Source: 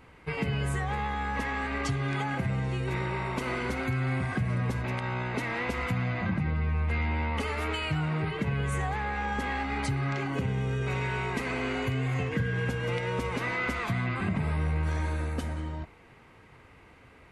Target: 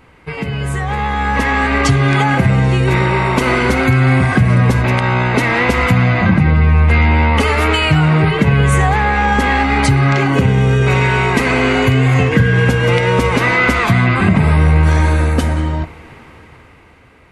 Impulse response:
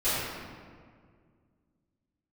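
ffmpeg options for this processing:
-filter_complex "[0:a]dynaudnorm=f=170:g=13:m=10dB,asplit=2[a][b];[1:a]atrim=start_sample=2205[c];[b][c]afir=irnorm=-1:irlink=0,volume=-34.5dB[d];[a][d]amix=inputs=2:normalize=0,volume=7.5dB"

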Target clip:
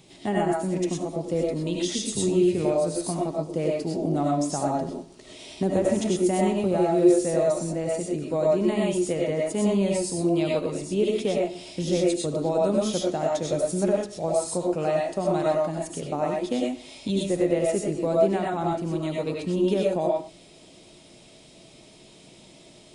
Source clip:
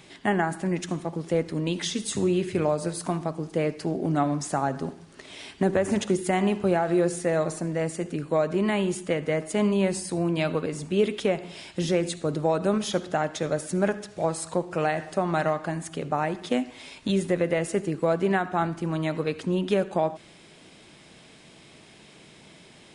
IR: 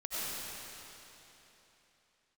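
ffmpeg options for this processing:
-filter_complex "[0:a]equalizer=f=1.6k:t=o:w=1.3:g=-12[a];[1:a]atrim=start_sample=2205,afade=t=out:st=0.18:d=0.01,atrim=end_sample=8379[b];[a][b]afir=irnorm=-1:irlink=0,volume=4dB"

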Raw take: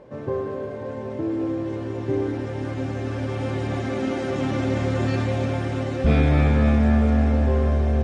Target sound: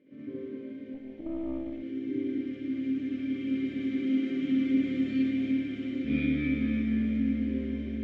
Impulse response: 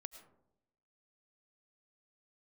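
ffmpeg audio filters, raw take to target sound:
-filter_complex "[0:a]asplit=3[a][b][c];[a]bandpass=f=270:t=q:w=8,volume=0dB[d];[b]bandpass=f=2.29k:t=q:w=8,volume=-6dB[e];[c]bandpass=f=3.01k:t=q:w=8,volume=-9dB[f];[d][e][f]amix=inputs=3:normalize=0,asplit=2[g][h];[1:a]atrim=start_sample=2205,adelay=67[i];[h][i]afir=irnorm=-1:irlink=0,volume=9dB[j];[g][j]amix=inputs=2:normalize=0,asettb=1/sr,asplit=3[k][l][m];[k]atrim=end=0.944[n];[l]atrim=start=0.94:end=1.83,asetpts=PTS-STARTPTS,afade=t=in:d=0.004:c=qsin,afade=t=out:st=0.886:d=0.004:c=qsin,aeval=exprs='(tanh(17.8*val(0)+0.65)-tanh(0.65))/17.8':c=same[o];[m]atrim=start=1.826[p];[n][o]acrossfade=d=0.004:c1=hsin:c2=qsin[q];[q][p]acrossfade=d=0.004:c1=qsin:c2=hsin,volume=-2dB"

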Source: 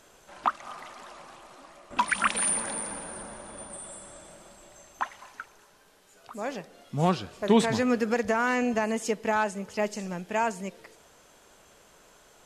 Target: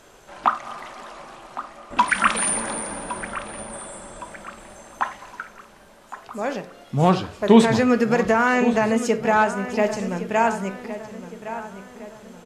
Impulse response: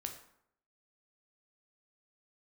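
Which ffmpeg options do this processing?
-filter_complex "[0:a]asplit=2[a][b];[b]adelay=1113,lowpass=f=3.6k:p=1,volume=-12.5dB,asplit=2[c][d];[d]adelay=1113,lowpass=f=3.6k:p=1,volume=0.46,asplit=2[e][f];[f]adelay=1113,lowpass=f=3.6k:p=1,volume=0.46,asplit=2[g][h];[h]adelay=1113,lowpass=f=3.6k:p=1,volume=0.46,asplit=2[i][j];[j]adelay=1113,lowpass=f=3.6k:p=1,volume=0.46[k];[a][c][e][g][i][k]amix=inputs=6:normalize=0,asplit=2[l][m];[1:a]atrim=start_sample=2205,afade=t=out:st=0.15:d=0.01,atrim=end_sample=7056,highshelf=f=4.8k:g=-11[n];[m][n]afir=irnorm=-1:irlink=0,volume=5dB[o];[l][o]amix=inputs=2:normalize=0"

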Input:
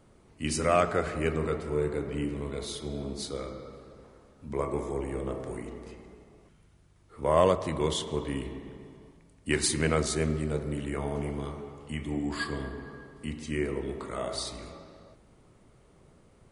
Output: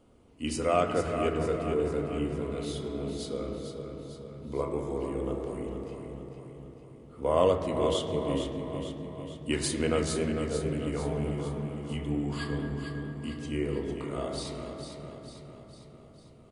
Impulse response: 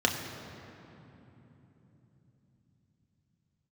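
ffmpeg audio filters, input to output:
-filter_complex "[0:a]aecho=1:1:451|902|1353|1804|2255|2706:0.398|0.215|0.116|0.0627|0.0339|0.0183,asplit=2[a][b];[1:a]atrim=start_sample=2205,lowpass=3.3k[c];[b][c]afir=irnorm=-1:irlink=0,volume=-13dB[d];[a][d]amix=inputs=2:normalize=0,volume=-5dB"

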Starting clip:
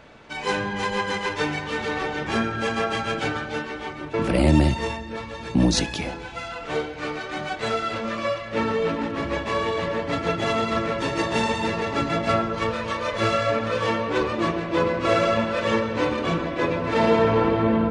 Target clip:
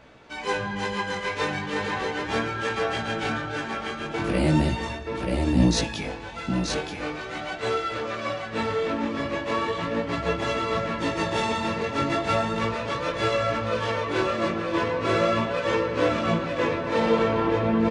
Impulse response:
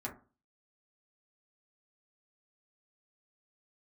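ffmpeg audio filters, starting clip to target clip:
-af "aecho=1:1:930:0.596,flanger=delay=15.5:depth=6.2:speed=0.38"

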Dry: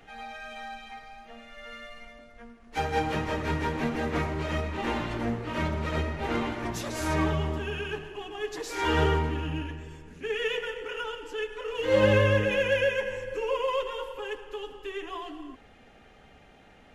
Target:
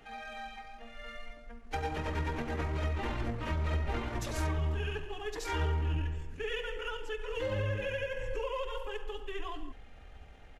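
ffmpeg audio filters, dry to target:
-af "atempo=1.6,acompressor=threshold=-29dB:ratio=6,asubboost=boost=5.5:cutoff=81,volume=-2.5dB"

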